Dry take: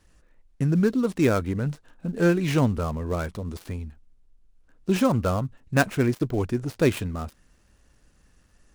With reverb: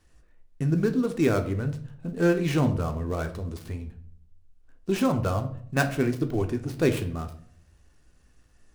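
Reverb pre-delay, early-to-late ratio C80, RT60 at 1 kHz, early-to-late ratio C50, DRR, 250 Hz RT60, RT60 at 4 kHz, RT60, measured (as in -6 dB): 3 ms, 16.5 dB, 0.50 s, 12.5 dB, 6.0 dB, 0.70 s, 0.40 s, 0.60 s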